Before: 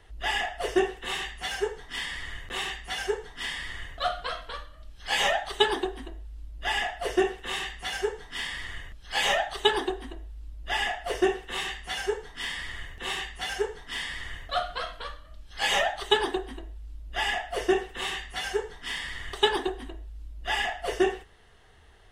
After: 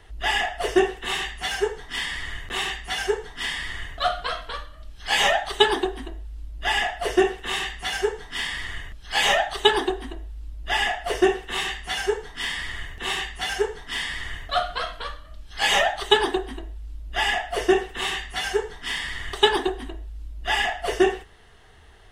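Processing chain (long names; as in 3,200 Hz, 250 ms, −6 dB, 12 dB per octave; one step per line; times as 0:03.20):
notch filter 530 Hz, Q 12
level +5 dB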